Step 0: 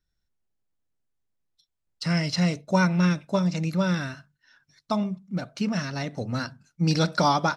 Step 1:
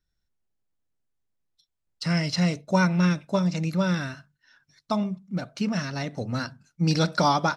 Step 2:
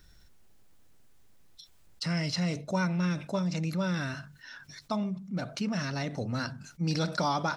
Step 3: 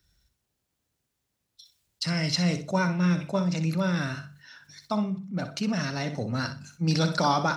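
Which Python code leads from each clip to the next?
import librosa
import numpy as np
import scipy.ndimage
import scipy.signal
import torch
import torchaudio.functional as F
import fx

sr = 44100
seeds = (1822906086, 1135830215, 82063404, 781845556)

y1 = x
y2 = fx.env_flatten(y1, sr, amount_pct=50)
y2 = y2 * 10.0 ** (-8.5 / 20.0)
y3 = scipy.signal.sosfilt(scipy.signal.butter(2, 58.0, 'highpass', fs=sr, output='sos'), y2)
y3 = fx.echo_feedback(y3, sr, ms=62, feedback_pct=24, wet_db=-10.0)
y3 = fx.band_widen(y3, sr, depth_pct=40)
y3 = y3 * 10.0 ** (3.5 / 20.0)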